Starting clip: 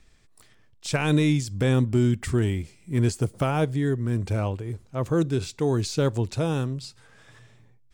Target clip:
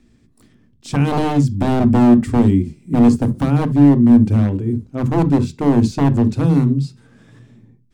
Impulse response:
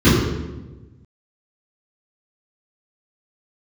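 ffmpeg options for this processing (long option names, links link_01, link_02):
-filter_complex "[0:a]equalizer=frequency=240:width_type=o:width=1.6:gain=15,aeval=exprs='0.316*(abs(mod(val(0)/0.316+3,4)-2)-1)':channel_layout=same,asplit=2[link_01][link_02];[1:a]atrim=start_sample=2205,atrim=end_sample=3528[link_03];[link_02][link_03]afir=irnorm=-1:irlink=0,volume=-33dB[link_04];[link_01][link_04]amix=inputs=2:normalize=0,volume=-2.5dB"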